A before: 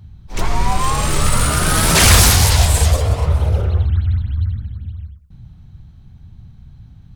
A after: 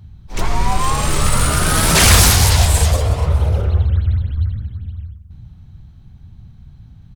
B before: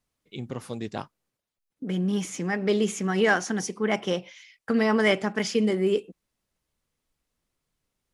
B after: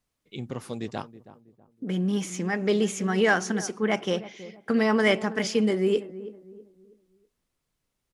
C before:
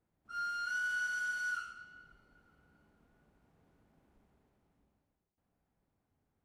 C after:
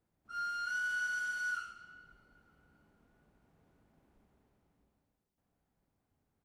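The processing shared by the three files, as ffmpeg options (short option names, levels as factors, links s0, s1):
-filter_complex "[0:a]asplit=2[s0][s1];[s1]adelay=323,lowpass=f=870:p=1,volume=0.188,asplit=2[s2][s3];[s3]adelay=323,lowpass=f=870:p=1,volume=0.39,asplit=2[s4][s5];[s5]adelay=323,lowpass=f=870:p=1,volume=0.39,asplit=2[s6][s7];[s7]adelay=323,lowpass=f=870:p=1,volume=0.39[s8];[s0][s2][s4][s6][s8]amix=inputs=5:normalize=0"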